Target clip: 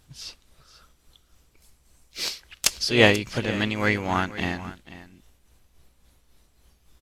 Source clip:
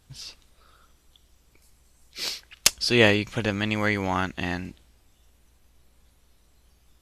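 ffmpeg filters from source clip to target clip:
-filter_complex "[0:a]tremolo=f=3.6:d=0.46,aecho=1:1:489:0.158,asplit=2[a][b];[b]asetrate=52444,aresample=44100,atempo=0.840896,volume=-11dB[c];[a][c]amix=inputs=2:normalize=0,volume=2dB"

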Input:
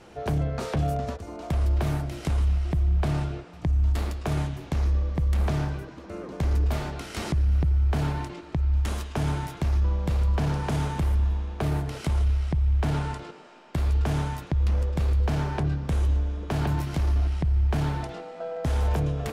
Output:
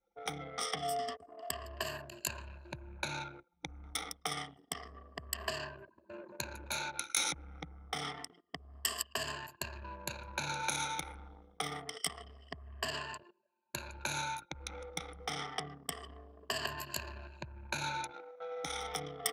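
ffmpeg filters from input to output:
-af "afftfilt=real='re*pow(10,19/40*sin(2*PI*(1.4*log(max(b,1)*sr/1024/100)/log(2)-(-0.27)*(pts-256)/sr)))':imag='im*pow(10,19/40*sin(2*PI*(1.4*log(max(b,1)*sr/1024/100)/log(2)-(-0.27)*(pts-256)/sr)))':win_size=1024:overlap=0.75,anlmdn=25.1,aderivative,volume=8.5dB"

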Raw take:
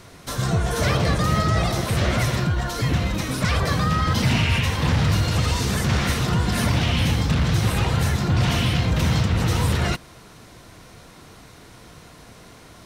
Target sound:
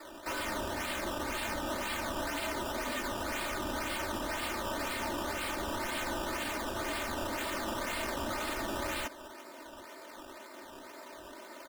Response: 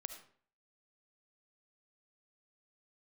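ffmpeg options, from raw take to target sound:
-af "highpass=f=380:t=q:w=0.5412,highpass=f=380:t=q:w=1.307,lowpass=f=2.4k:t=q:w=0.5176,lowpass=f=2.4k:t=q:w=0.7071,lowpass=f=2.4k:t=q:w=1.932,afreqshift=-57,acrusher=samples=14:mix=1:aa=0.000001:lfo=1:lforange=14:lforate=1.8,aeval=exprs='0.0237*(abs(mod(val(0)/0.0237+3,4)-2)-1)':c=same,atempo=1.1,aecho=1:1:3.3:0.72"

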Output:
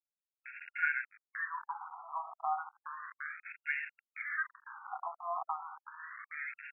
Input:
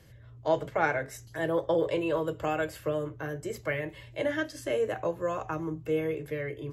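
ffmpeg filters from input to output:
-filter_complex "[0:a]asettb=1/sr,asplit=3[a][b][c];[a]atrim=end=1.464[d];[b]atrim=start=1.46:end=2.15,asetpts=PTS-STARTPTS,afade=t=in:d=0.004:c=qsin,afade=t=out:st=0.686:d=0.004:c=qsin,lowshelf=f=140:g=-12[e];[c]atrim=start=2.146[f];[d][e]acrossfade=d=0.004:c1=hsin:c2=qsin[g];[g][f]acrossfade=d=0.004:c1=qsin:c2=hsin,acrusher=bits=5:mix=0:aa=0.000001,afftfilt=real='re*between(b*sr/1024,930*pow(2000/930,0.5+0.5*sin(2*PI*0.33*pts/sr))/1.41,930*pow(2000/930,0.5+0.5*sin(2*PI*0.33*pts/sr))*1.41)':imag='im*between(b*sr/1024,930*pow(2000/930,0.5+0.5*sin(2*PI*0.33*pts/sr))/1.41,930*pow(2000/930,0.5+0.5*sin(2*PI*0.33*pts/sr))*1.41)':win_size=1024:overlap=0.75"

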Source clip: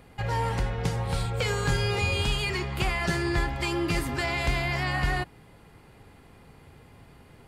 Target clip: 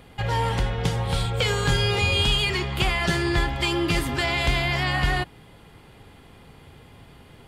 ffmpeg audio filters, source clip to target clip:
-af "equalizer=f=3.3k:t=o:w=0.38:g=7.5,volume=3.5dB"

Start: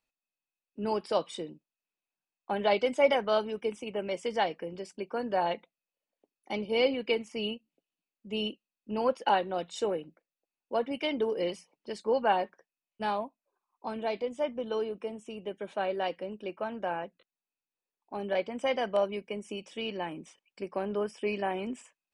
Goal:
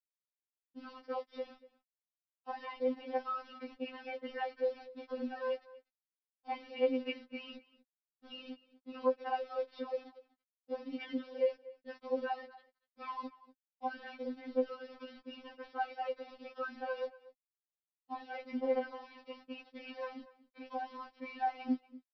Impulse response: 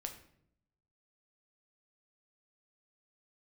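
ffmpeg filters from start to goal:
-filter_complex "[0:a]acrossover=split=180 2600:gain=0.178 1 0.1[a][b][c];[a][b][c]amix=inputs=3:normalize=0,acompressor=threshold=-34dB:ratio=8,aresample=11025,aeval=exprs='val(0)*gte(abs(val(0)),0.00266)':c=same,aresample=44100,asplit=2[d][e];[e]adelay=239.1,volume=-19dB,highshelf=f=4k:g=-5.38[f];[d][f]amix=inputs=2:normalize=0,afftfilt=real='re*3.46*eq(mod(b,12),0)':imag='im*3.46*eq(mod(b,12),0)':win_size=2048:overlap=0.75,volume=3.5dB"

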